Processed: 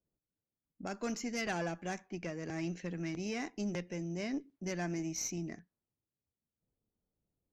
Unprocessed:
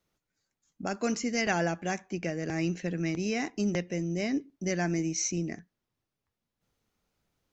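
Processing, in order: tube stage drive 21 dB, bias 0.35; low-pass opened by the level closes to 520 Hz, open at -31.5 dBFS; gain -5.5 dB

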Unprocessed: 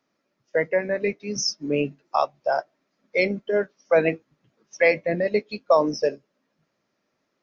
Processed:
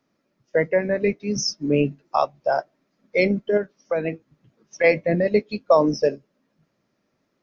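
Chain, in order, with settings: low shelf 300 Hz +9.5 dB; 3.57–4.84 compressor 3:1, threshold -23 dBFS, peak gain reduction 9.5 dB

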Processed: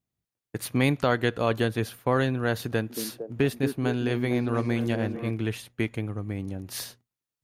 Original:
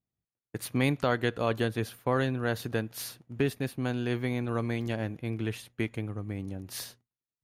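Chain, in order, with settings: 2.67–5.31 delay with a stepping band-pass 0.228 s, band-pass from 290 Hz, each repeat 0.7 oct, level -3.5 dB; gain +3.5 dB

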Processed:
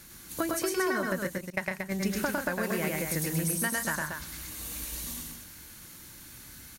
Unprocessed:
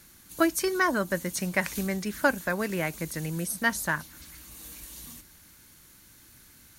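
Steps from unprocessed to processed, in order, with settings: 1.27–1.92 gate -26 dBFS, range -30 dB; 2.63–3.76 high shelf 8400 Hz +7.5 dB; compressor 5:1, threshold -33 dBFS, peak gain reduction 14.5 dB; loudspeakers at several distances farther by 36 m -2 dB, 47 m -8 dB, 79 m -6 dB; gain +3.5 dB

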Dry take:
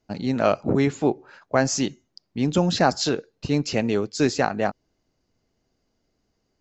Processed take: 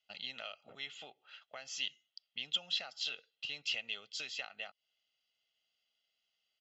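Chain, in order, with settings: comb 1.5 ms, depth 64%; compressor 10:1, threshold -26 dBFS, peak gain reduction 15.5 dB; band-pass 3100 Hz, Q 10; gain +11.5 dB

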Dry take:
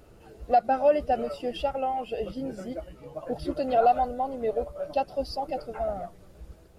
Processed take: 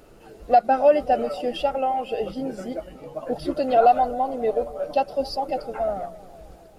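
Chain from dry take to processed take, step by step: bell 80 Hz -9.5 dB 1.2 oct; notches 60/120/180 Hz; on a send: analogue delay 0.267 s, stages 2048, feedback 55%, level -18.5 dB; on the sum: gain +5 dB

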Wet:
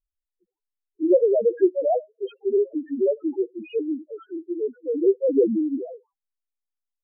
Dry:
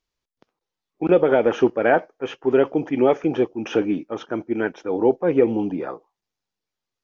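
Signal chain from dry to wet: 2.45–4.62 HPF 450 Hz 6 dB/oct; loudest bins only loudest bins 1; air absorption 240 m; gain +7 dB

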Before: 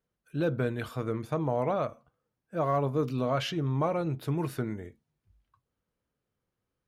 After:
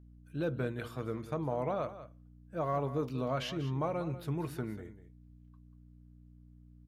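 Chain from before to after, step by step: hum 60 Hz, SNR 18 dB; echo 0.19 s -13.5 dB; gain -5.5 dB

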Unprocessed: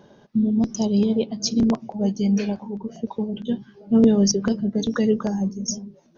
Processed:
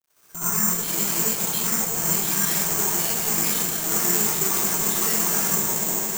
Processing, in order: trilling pitch shifter -4.5 st, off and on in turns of 0.113 s; recorder AGC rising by 51 dB/s; gate -34 dBFS, range -17 dB; band shelf 2200 Hz +14 dB 2.4 oct; limiter -18.5 dBFS, peak gain reduction 17.5 dB; added harmonics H 8 -8 dB, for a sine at -18.5 dBFS; bit-crush 9-bit; tone controls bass -6 dB, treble +2 dB; swelling echo 0.112 s, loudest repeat 8, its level -16 dB; reverb RT60 0.60 s, pre-delay 60 ms, DRR -10.5 dB; careless resampling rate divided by 6×, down filtered, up zero stuff; gain -15 dB

